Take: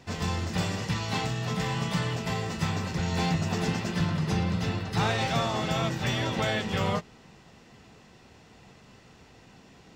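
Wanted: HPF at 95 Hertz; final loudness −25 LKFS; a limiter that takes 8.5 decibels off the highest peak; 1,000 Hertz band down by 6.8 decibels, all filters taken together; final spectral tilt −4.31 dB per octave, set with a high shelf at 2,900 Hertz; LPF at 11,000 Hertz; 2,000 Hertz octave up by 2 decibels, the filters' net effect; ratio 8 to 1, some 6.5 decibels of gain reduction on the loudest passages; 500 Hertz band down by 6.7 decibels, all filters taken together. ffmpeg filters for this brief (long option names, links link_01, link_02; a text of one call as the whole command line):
ffmpeg -i in.wav -af "highpass=95,lowpass=11000,equalizer=frequency=500:width_type=o:gain=-6.5,equalizer=frequency=1000:width_type=o:gain=-8,equalizer=frequency=2000:width_type=o:gain=7,highshelf=frequency=2900:gain=-5.5,acompressor=threshold=-31dB:ratio=8,volume=13.5dB,alimiter=limit=-16.5dB:level=0:latency=1" out.wav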